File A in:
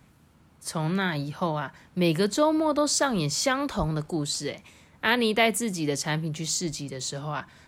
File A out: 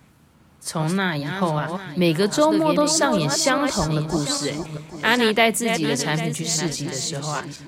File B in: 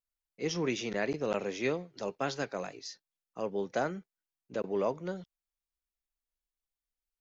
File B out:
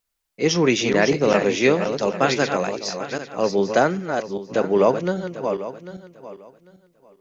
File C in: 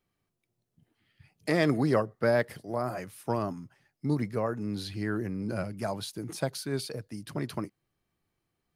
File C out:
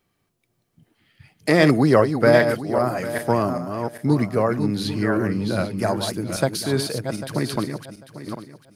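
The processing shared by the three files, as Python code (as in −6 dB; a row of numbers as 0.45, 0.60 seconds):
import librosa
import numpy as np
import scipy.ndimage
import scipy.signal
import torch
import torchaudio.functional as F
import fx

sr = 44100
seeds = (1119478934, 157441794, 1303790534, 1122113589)

y = fx.reverse_delay_fb(x, sr, ms=398, feedback_pct=44, wet_db=-7)
y = fx.low_shelf(y, sr, hz=65.0, db=-5.5)
y = y * 10.0 ** (-22 / 20.0) / np.sqrt(np.mean(np.square(y)))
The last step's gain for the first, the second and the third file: +4.5, +14.0, +10.0 decibels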